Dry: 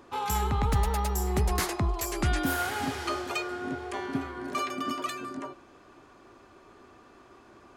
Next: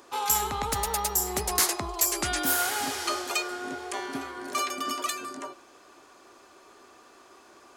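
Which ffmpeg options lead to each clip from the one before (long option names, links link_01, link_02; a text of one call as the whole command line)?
ffmpeg -i in.wav -af "bass=frequency=250:gain=-14,treble=frequency=4000:gain=10,volume=1.5dB" out.wav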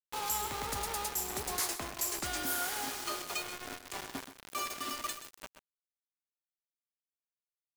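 ffmpeg -i in.wav -filter_complex "[0:a]acrusher=bits=4:mix=0:aa=0.000001,asoftclip=type=tanh:threshold=-17dB,asplit=2[link_01][link_02];[link_02]aecho=0:1:129:0.266[link_03];[link_01][link_03]amix=inputs=2:normalize=0,volume=-8dB" out.wav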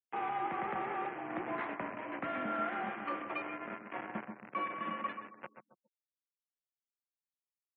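ffmpeg -i in.wav -filter_complex "[0:a]highpass=frequency=210:width_type=q:width=0.5412,highpass=frequency=210:width_type=q:width=1.307,lowpass=frequency=2400:width_type=q:width=0.5176,lowpass=frequency=2400:width_type=q:width=0.7071,lowpass=frequency=2400:width_type=q:width=1.932,afreqshift=-56,asplit=2[link_01][link_02];[link_02]adelay=139,lowpass=frequency=880:poles=1,volume=-7dB,asplit=2[link_03][link_04];[link_04]adelay=139,lowpass=frequency=880:poles=1,volume=0.42,asplit=2[link_05][link_06];[link_06]adelay=139,lowpass=frequency=880:poles=1,volume=0.42,asplit=2[link_07][link_08];[link_08]adelay=139,lowpass=frequency=880:poles=1,volume=0.42,asplit=2[link_09][link_10];[link_10]adelay=139,lowpass=frequency=880:poles=1,volume=0.42[link_11];[link_01][link_03][link_05][link_07][link_09][link_11]amix=inputs=6:normalize=0,afftfilt=real='re*gte(hypot(re,im),0.000891)':imag='im*gte(hypot(re,im),0.000891)':win_size=1024:overlap=0.75,volume=2dB" out.wav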